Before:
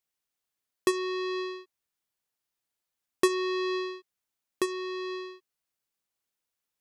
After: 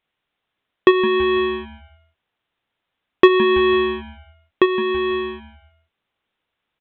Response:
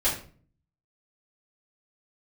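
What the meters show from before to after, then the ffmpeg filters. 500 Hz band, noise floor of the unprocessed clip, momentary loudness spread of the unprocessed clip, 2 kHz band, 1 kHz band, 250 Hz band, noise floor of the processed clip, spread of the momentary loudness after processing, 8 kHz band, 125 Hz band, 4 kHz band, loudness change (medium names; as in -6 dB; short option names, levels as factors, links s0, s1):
+14.0 dB, under -85 dBFS, 12 LU, +14.0 dB, +14.0 dB, +14.0 dB, -80 dBFS, 11 LU, under -20 dB, no reading, +11.0 dB, +13.5 dB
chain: -filter_complex "[0:a]aresample=8000,aresample=44100,asplit=4[s0][s1][s2][s3];[s1]adelay=164,afreqshift=-150,volume=0.15[s4];[s2]adelay=328,afreqshift=-300,volume=0.0569[s5];[s3]adelay=492,afreqshift=-450,volume=0.0216[s6];[s0][s4][s5][s6]amix=inputs=4:normalize=0,acontrast=80,volume=2.24"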